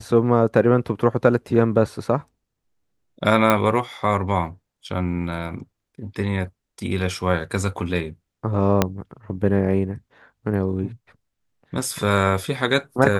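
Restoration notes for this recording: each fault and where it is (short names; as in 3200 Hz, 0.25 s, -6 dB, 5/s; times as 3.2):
3.5 pop -4 dBFS
8.82 pop -2 dBFS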